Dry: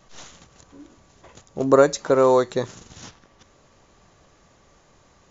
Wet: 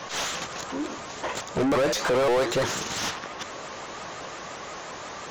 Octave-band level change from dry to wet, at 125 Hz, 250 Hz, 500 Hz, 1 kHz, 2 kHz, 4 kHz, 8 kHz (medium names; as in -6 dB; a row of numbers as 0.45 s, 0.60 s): -2.0 dB, -2.5 dB, -5.5 dB, -2.0 dB, +5.5 dB, +9.0 dB, no reading